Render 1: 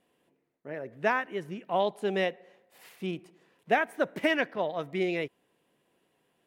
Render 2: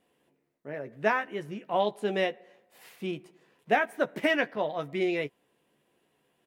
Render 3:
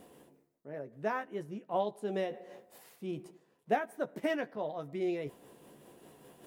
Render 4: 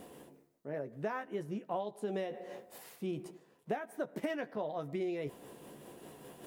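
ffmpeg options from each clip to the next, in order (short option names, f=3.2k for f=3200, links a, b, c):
-filter_complex "[0:a]asplit=2[a][b];[b]adelay=14,volume=-8dB[c];[a][c]amix=inputs=2:normalize=0"
-af "equalizer=f=2.4k:w=0.79:g=-9.5,areverse,acompressor=mode=upward:threshold=-34dB:ratio=2.5,areverse,tremolo=f=5.1:d=0.33,volume=-3dB"
-af "acompressor=threshold=-38dB:ratio=6,volume=4.5dB"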